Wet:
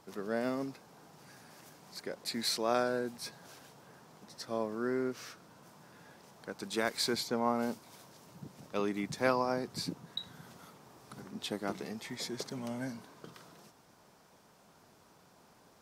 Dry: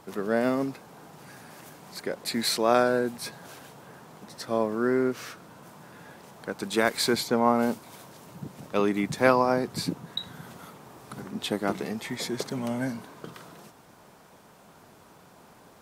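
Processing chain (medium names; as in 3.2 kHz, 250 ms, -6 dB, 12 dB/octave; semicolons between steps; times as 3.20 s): peaking EQ 5.3 kHz +5.5 dB 0.79 oct; trim -9 dB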